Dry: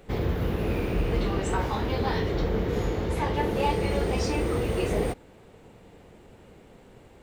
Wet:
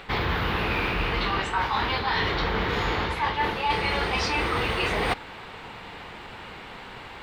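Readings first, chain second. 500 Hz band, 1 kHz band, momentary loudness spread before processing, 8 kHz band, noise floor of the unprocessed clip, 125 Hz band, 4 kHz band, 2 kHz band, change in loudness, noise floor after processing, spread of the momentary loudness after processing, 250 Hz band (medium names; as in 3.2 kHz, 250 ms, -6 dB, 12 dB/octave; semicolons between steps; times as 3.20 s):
-3.0 dB, +6.5 dB, 3 LU, -1.5 dB, -53 dBFS, -3.5 dB, +10.0 dB, +10.5 dB, +2.0 dB, -42 dBFS, 15 LU, -3.5 dB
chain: high-order bell 2 kHz +15 dB 2.9 oct; reverse; compression 12:1, threshold -27 dBFS, peak gain reduction 17 dB; reverse; trim +5 dB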